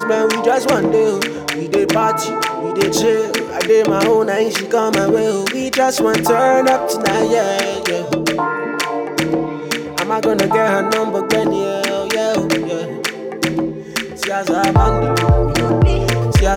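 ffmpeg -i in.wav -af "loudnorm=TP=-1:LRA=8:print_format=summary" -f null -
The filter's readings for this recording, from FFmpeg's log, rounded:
Input Integrated:    -16.1 LUFS
Input True Peak:      -2.0 dBTP
Input LRA:             2.7 LU
Input Threshold:     -26.1 LUFS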